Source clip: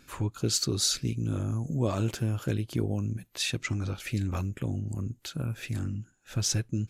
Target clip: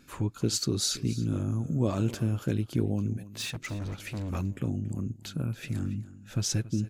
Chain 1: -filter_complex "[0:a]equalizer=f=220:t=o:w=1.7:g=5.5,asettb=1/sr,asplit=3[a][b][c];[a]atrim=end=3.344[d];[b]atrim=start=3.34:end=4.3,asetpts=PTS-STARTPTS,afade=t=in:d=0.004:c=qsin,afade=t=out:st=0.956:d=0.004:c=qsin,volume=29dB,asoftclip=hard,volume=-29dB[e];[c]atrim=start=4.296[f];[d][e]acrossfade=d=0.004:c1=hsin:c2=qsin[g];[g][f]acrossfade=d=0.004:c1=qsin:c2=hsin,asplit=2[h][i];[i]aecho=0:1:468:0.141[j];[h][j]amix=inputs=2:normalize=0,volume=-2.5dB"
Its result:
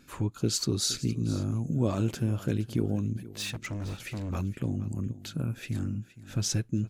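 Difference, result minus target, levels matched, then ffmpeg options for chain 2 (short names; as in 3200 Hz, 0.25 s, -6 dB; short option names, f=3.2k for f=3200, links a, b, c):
echo 0.188 s late
-filter_complex "[0:a]equalizer=f=220:t=o:w=1.7:g=5.5,asettb=1/sr,asplit=3[a][b][c];[a]atrim=end=3.344[d];[b]atrim=start=3.34:end=4.3,asetpts=PTS-STARTPTS,afade=t=in:d=0.004:c=qsin,afade=t=out:st=0.956:d=0.004:c=qsin,volume=29dB,asoftclip=hard,volume=-29dB[e];[c]atrim=start=4.296[f];[d][e]acrossfade=d=0.004:c1=hsin:c2=qsin[g];[g][f]acrossfade=d=0.004:c1=qsin:c2=hsin,asplit=2[h][i];[i]aecho=0:1:280:0.141[j];[h][j]amix=inputs=2:normalize=0,volume=-2.5dB"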